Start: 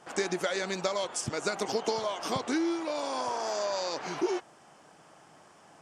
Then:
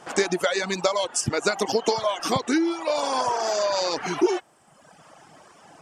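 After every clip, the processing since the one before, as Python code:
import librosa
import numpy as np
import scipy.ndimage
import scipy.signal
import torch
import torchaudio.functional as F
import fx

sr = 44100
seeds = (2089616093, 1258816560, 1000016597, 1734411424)

y = fx.dereverb_blind(x, sr, rt60_s=1.2)
y = fx.rider(y, sr, range_db=10, speed_s=0.5)
y = y * librosa.db_to_amplitude(9.0)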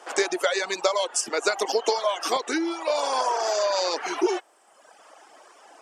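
y = scipy.signal.sosfilt(scipy.signal.butter(4, 350.0, 'highpass', fs=sr, output='sos'), x)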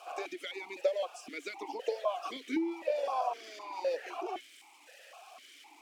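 y = x + 0.5 * 10.0 ** (-23.0 / 20.0) * np.diff(np.sign(x), prepend=np.sign(x[:1]))
y = fx.vowel_held(y, sr, hz=3.9)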